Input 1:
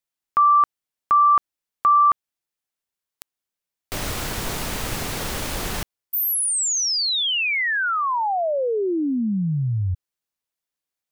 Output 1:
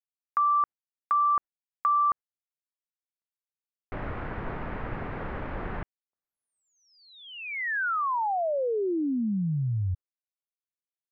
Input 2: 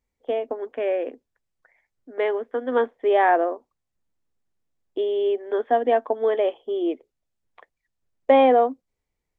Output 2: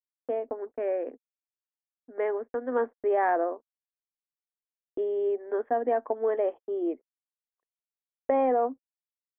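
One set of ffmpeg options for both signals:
-af "agate=range=-49dB:threshold=-44dB:ratio=16:release=114:detection=peak,lowpass=f=1.9k:w=0.5412,lowpass=f=1.9k:w=1.3066,acompressor=threshold=-17dB:ratio=6:attack=9.3:release=52:knee=1:detection=peak,volume=-5dB"

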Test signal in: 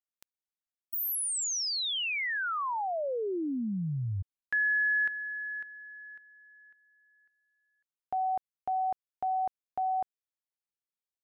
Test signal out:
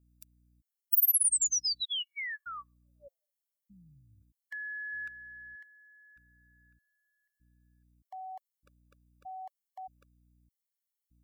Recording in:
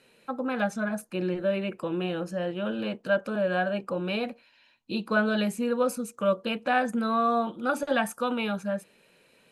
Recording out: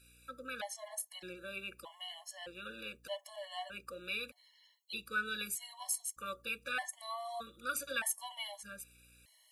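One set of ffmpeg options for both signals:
-af "aderivative,aeval=exprs='val(0)+0.000251*(sin(2*PI*60*n/s)+sin(2*PI*2*60*n/s)/2+sin(2*PI*3*60*n/s)/3+sin(2*PI*4*60*n/s)/4+sin(2*PI*5*60*n/s)/5)':c=same,afftfilt=real='re*gt(sin(2*PI*0.81*pts/sr)*(1-2*mod(floor(b*sr/1024/570),2)),0)':imag='im*gt(sin(2*PI*0.81*pts/sr)*(1-2*mod(floor(b*sr/1024/570),2)),0)':win_size=1024:overlap=0.75,volume=6.5dB"

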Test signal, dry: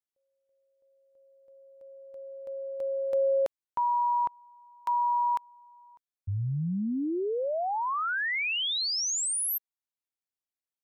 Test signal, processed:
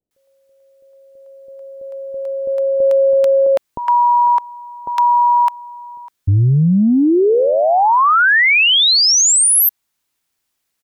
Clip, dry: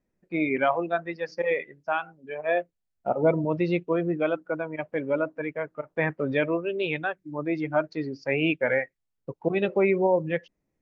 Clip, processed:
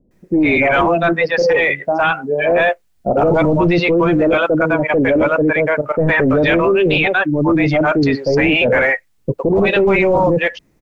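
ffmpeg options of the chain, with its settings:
-filter_complex "[0:a]acrossover=split=580[a][b];[b]adelay=110[c];[a][c]amix=inputs=2:normalize=0,apsyclip=30.5dB,volume=-9dB"

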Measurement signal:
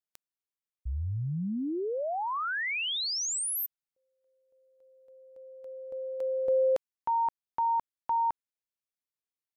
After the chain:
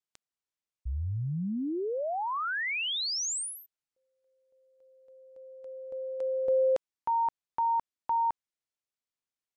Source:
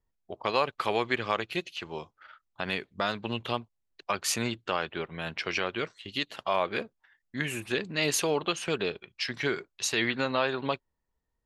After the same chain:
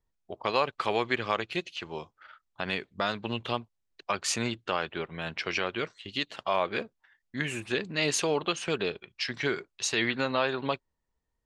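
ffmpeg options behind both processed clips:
-af "lowpass=f=9k:w=0.5412,lowpass=f=9k:w=1.3066"

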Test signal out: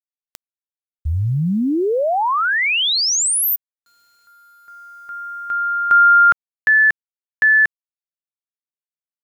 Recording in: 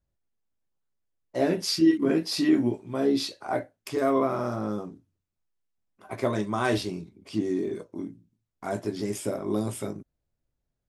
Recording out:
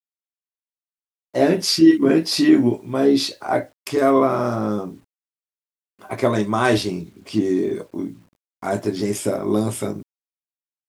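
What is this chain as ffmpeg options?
-af "lowshelf=f=80:g=-2.5,acrusher=bits=10:mix=0:aa=0.000001,volume=8dB"

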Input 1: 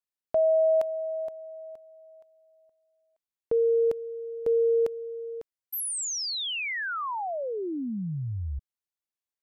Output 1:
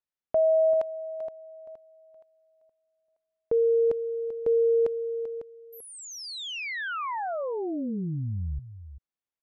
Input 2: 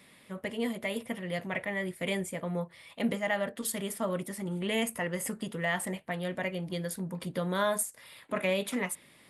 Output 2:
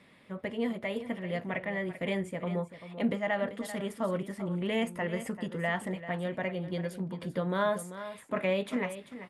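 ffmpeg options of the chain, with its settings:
-af "aemphasis=mode=reproduction:type=75fm,aecho=1:1:390:0.237"

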